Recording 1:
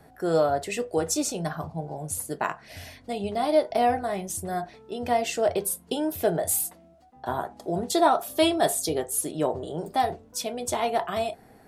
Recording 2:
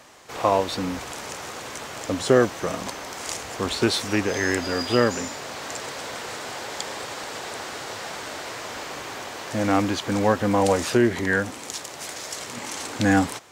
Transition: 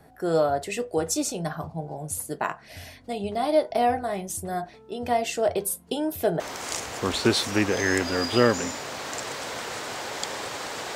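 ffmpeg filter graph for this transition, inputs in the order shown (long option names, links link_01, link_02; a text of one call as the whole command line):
ffmpeg -i cue0.wav -i cue1.wav -filter_complex "[0:a]apad=whole_dur=10.95,atrim=end=10.95,atrim=end=6.402[link_01];[1:a]atrim=start=2.968:end=7.52[link_02];[link_01][link_02]acrossfade=duration=0.004:curve1=hsin:curve2=hsin" out.wav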